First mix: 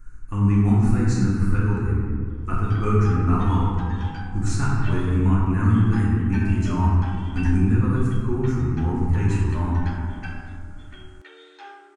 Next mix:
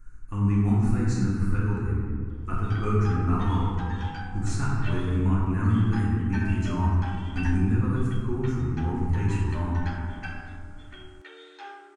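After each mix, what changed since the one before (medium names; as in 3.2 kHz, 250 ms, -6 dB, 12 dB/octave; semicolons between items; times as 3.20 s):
speech -4.5 dB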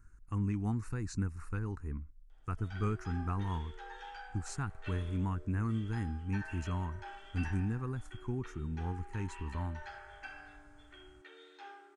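background -8.5 dB; reverb: off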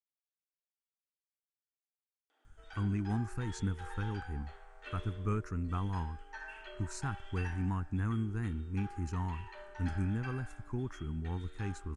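speech: entry +2.45 s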